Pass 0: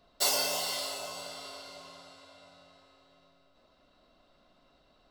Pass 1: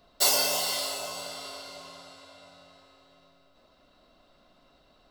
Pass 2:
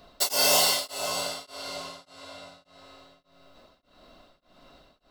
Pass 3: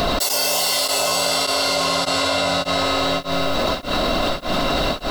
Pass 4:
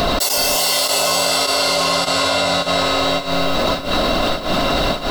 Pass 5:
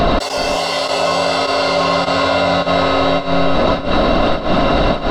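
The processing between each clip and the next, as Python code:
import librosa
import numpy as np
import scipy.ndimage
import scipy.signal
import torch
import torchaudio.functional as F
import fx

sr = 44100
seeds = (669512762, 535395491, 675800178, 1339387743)

y1 = fx.high_shelf(x, sr, hz=9300.0, db=4.0)
y1 = y1 * 10.0 ** (3.5 / 20.0)
y2 = y1 * np.abs(np.cos(np.pi * 1.7 * np.arange(len(y1)) / sr))
y2 = y2 * 10.0 ** (8.0 / 20.0)
y3 = fx.env_flatten(y2, sr, amount_pct=100)
y4 = y3 + 10.0 ** (-11.5 / 20.0) * np.pad(y3, (int(375 * sr / 1000.0), 0))[:len(y3)]
y4 = y4 * 10.0 ** (2.5 / 20.0)
y5 = fx.spacing_loss(y4, sr, db_at_10k=24)
y5 = y5 * 10.0 ** (6.0 / 20.0)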